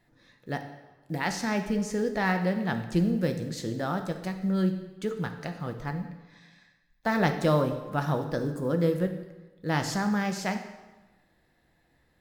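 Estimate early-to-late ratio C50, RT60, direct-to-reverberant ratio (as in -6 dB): 8.5 dB, 1.2 s, 5.5 dB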